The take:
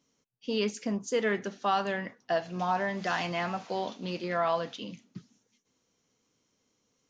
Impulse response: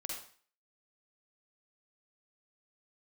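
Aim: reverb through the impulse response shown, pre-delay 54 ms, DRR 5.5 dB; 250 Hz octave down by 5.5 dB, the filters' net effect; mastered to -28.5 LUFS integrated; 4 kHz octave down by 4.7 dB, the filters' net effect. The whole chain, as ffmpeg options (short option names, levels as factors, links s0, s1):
-filter_complex "[0:a]equalizer=f=250:t=o:g=-8,equalizer=f=4000:t=o:g=-7,asplit=2[s0][s1];[1:a]atrim=start_sample=2205,adelay=54[s2];[s1][s2]afir=irnorm=-1:irlink=0,volume=0.562[s3];[s0][s3]amix=inputs=2:normalize=0,volume=1.58"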